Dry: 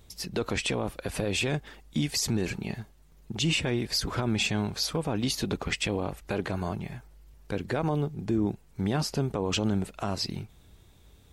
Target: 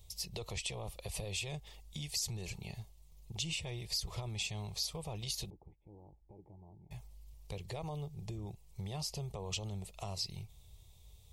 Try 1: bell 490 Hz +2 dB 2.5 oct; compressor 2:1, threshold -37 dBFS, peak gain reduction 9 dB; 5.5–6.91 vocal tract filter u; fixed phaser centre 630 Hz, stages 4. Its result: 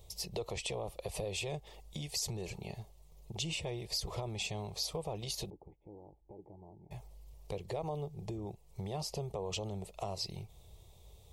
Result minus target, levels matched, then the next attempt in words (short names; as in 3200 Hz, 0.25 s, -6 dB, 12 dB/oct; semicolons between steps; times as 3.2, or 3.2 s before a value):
500 Hz band +6.5 dB
bell 490 Hz -9 dB 2.5 oct; compressor 2:1, threshold -37 dBFS, peak gain reduction 7.5 dB; 5.5–6.91 vocal tract filter u; fixed phaser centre 630 Hz, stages 4